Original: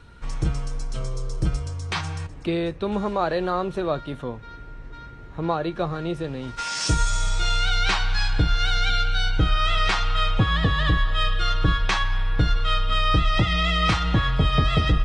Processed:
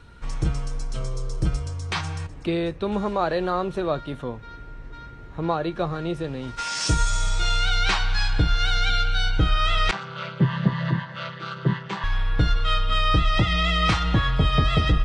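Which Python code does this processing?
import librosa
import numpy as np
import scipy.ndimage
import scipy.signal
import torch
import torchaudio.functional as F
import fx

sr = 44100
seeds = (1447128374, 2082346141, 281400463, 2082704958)

y = fx.chord_vocoder(x, sr, chord='major triad', root=48, at=(9.91, 12.04))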